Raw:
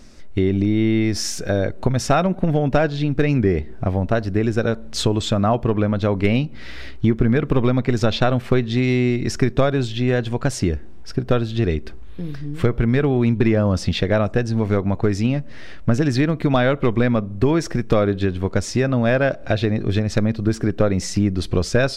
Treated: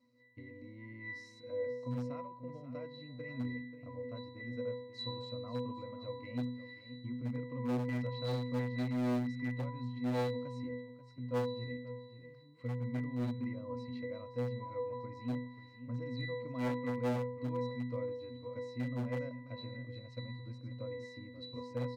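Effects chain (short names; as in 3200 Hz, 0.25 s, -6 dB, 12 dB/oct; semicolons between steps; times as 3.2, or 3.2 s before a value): HPF 120 Hz 6 dB/oct; octave resonator B, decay 0.79 s; on a send: echo 0.536 s -12.5 dB; on the sum: hard clip -26.5 dBFS, distortion -13 dB; tilt +3 dB/oct; gain +3 dB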